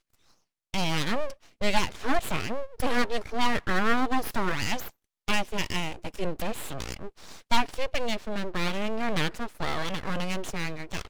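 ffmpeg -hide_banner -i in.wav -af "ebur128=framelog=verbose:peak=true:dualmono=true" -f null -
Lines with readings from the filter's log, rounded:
Integrated loudness:
  I:         -27.1 LUFS
  Threshold: -37.4 LUFS
Loudness range:
  LRA:         3.5 LU
  Threshold: -47.1 LUFS
  LRA low:   -29.0 LUFS
  LRA high:  -25.5 LUFS
True peak:
  Peak:       -8.6 dBFS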